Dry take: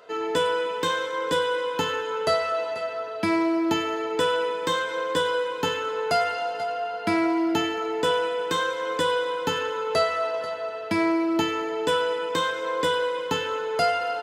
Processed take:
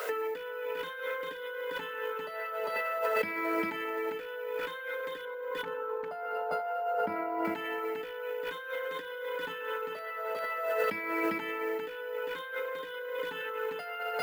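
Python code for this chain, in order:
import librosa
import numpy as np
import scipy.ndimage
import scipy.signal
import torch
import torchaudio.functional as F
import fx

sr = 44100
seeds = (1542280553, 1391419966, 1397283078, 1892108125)

y = fx.envelope_sharpen(x, sr, power=1.5)
y = scipy.signal.sosfilt(scipy.signal.butter(2, 180.0, 'highpass', fs=sr, output='sos'), y)
y = fx.notch_comb(y, sr, f0_hz=340.0)
y = np.repeat(y[::3], 3)[:len(y)]
y = fx.dmg_noise_colour(y, sr, seeds[0], colour='blue', level_db=-60.0)
y = fx.high_shelf_res(y, sr, hz=1500.0, db=-12.5, q=1.5, at=(5.25, 7.45))
y = 10.0 ** (-17.5 / 20.0) * (np.abs((y / 10.0 ** (-17.5 / 20.0) + 3.0) % 4.0 - 2.0) - 1.0)
y = fx.peak_eq(y, sr, hz=2000.0, db=14.0, octaves=1.6)
y = y + 10.0 ** (-6.0 / 20.0) * np.pad(y, (int(400 * sr / 1000.0), 0))[:len(y)]
y = fx.over_compress(y, sr, threshold_db=-36.0, ratio=-1.0)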